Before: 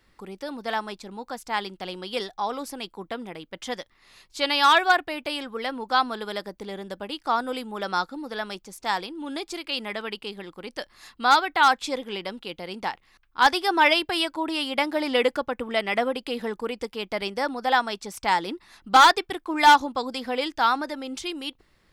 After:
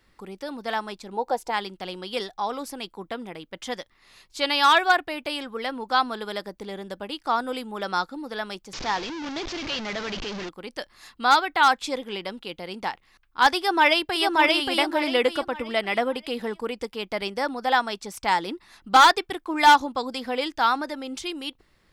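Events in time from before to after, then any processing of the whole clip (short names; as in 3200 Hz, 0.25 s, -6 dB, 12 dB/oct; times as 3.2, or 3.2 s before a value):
1.13–1.5 spectral gain 320–990 Hz +11 dB
8.73–10.49 delta modulation 32 kbps, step -27 dBFS
13.57–14.35 echo throw 0.58 s, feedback 30%, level -1 dB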